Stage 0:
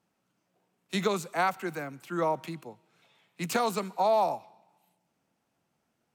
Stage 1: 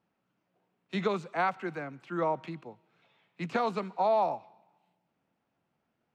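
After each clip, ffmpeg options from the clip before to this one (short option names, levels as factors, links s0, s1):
-af "deesser=0.75,lowpass=3300,volume=0.841"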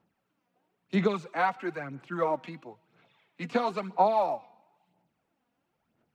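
-af "aphaser=in_gain=1:out_gain=1:delay=4.2:decay=0.55:speed=1:type=sinusoidal"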